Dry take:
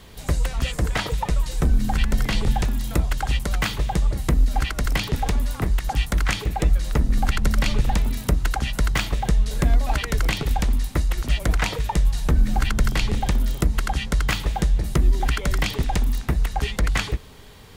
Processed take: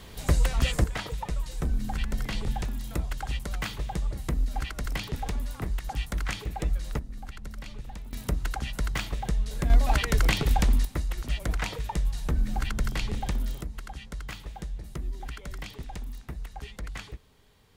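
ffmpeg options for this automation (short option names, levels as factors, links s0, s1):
-af "asetnsamples=n=441:p=0,asendcmd='0.84 volume volume -9dB;6.99 volume volume -19.5dB;8.13 volume volume -8dB;9.7 volume volume -1dB;10.85 volume volume -8dB;13.62 volume volume -16dB',volume=0.944"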